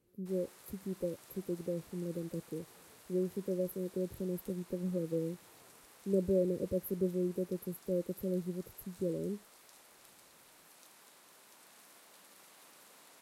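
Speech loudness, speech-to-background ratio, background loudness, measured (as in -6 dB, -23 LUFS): -37.5 LUFS, 20.0 dB, -57.5 LUFS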